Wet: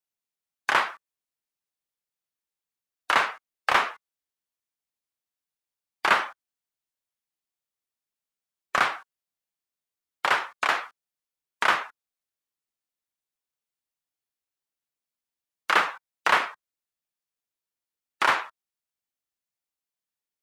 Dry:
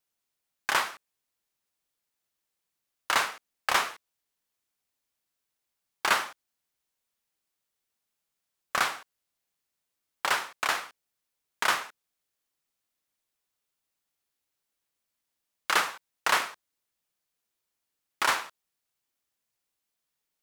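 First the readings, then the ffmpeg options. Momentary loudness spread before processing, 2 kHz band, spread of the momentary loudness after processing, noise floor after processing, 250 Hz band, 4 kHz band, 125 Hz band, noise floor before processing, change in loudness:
12 LU, +4.0 dB, 12 LU, under -85 dBFS, +4.0 dB, 0.0 dB, +3.0 dB, -84 dBFS, +3.5 dB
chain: -filter_complex "[0:a]afftdn=nr=13:nf=-44,acrossover=split=130|3400[a][b][c];[c]acompressor=threshold=-45dB:ratio=6[d];[a][b][d]amix=inputs=3:normalize=0,volume=4.5dB"

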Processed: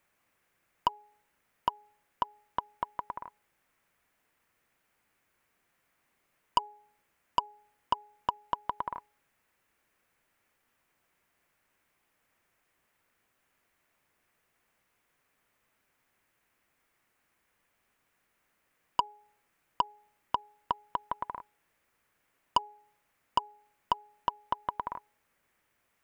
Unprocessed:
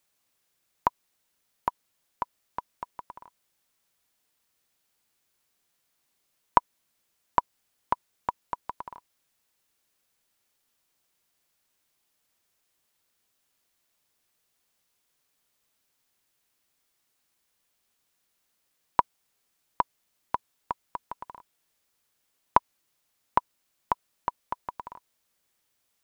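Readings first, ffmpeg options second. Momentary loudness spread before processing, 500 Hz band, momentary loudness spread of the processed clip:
18 LU, -5.5 dB, 11 LU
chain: -filter_complex "[0:a]highshelf=f=2.9k:t=q:w=1.5:g=-9.5,bandreject=f=417.3:t=h:w=4,bandreject=f=834.6:t=h:w=4,asplit=2[a][b];[b]acompressor=threshold=-32dB:ratio=6,volume=-1dB[c];[a][c]amix=inputs=2:normalize=0,asoftclip=type=tanh:threshold=-15.5dB"

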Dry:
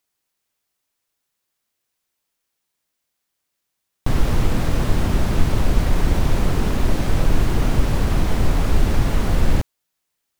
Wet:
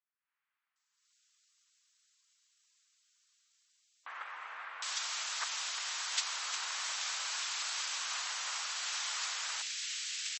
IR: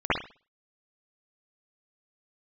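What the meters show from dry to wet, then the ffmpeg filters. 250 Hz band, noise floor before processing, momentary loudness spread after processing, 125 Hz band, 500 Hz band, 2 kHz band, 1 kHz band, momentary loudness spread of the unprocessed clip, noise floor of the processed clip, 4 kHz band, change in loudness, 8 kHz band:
under -40 dB, -78 dBFS, 10 LU, under -40 dB, -32.0 dB, -6.5 dB, -12.5 dB, 2 LU, under -85 dBFS, -0.5 dB, -13.5 dB, +1.5 dB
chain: -filter_complex "[0:a]aresample=22050,aresample=44100,dynaudnorm=f=170:g=3:m=12.5dB,equalizer=f=6k:w=0.33:g=8,agate=range=-20dB:threshold=-4dB:ratio=16:detection=peak,highpass=f=1.1k:w=0.5412,highpass=f=1.1k:w=1.3066,highshelf=f=8.7k:g=10,acrossover=split=2000[a][b];[b]adelay=760[c];[a][c]amix=inputs=2:normalize=0,asplit=2[d][e];[1:a]atrim=start_sample=2205,lowpass=f=1.1k:w=0.5412,lowpass=f=1.1k:w=1.3066[f];[e][f]afir=irnorm=-1:irlink=0,volume=-32dB[g];[d][g]amix=inputs=2:normalize=0,volume=7.5dB" -ar 32000 -c:a libmp3lame -b:a 32k

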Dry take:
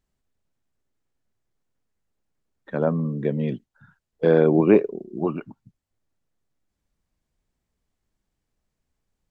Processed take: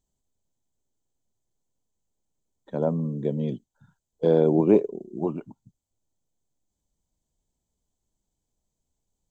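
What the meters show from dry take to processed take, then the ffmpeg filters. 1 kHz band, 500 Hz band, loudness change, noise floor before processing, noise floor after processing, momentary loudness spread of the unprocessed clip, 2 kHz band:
-3.5 dB, -2.5 dB, -2.5 dB, -81 dBFS, -83 dBFS, 16 LU, under -10 dB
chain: -af "superequalizer=10b=0.355:11b=0.251:12b=0.355:15b=2.51,volume=-2.5dB"

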